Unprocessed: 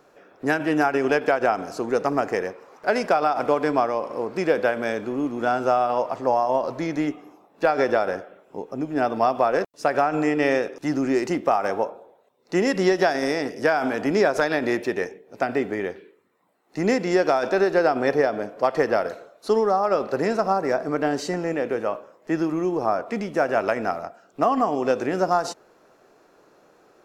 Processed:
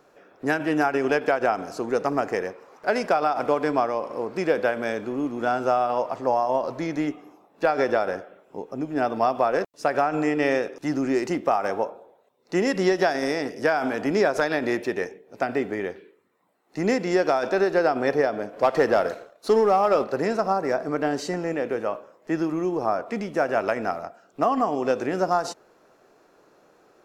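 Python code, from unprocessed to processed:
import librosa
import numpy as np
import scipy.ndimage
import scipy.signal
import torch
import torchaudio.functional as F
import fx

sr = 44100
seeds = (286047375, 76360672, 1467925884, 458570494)

y = fx.leveller(x, sr, passes=1, at=(18.53, 20.04))
y = y * 10.0 ** (-1.5 / 20.0)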